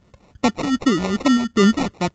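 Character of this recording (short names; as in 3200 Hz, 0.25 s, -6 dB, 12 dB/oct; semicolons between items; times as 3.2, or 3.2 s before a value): phasing stages 2, 2.6 Hz, lowest notch 420–2200 Hz; aliases and images of a low sample rate 1600 Hz, jitter 0%; A-law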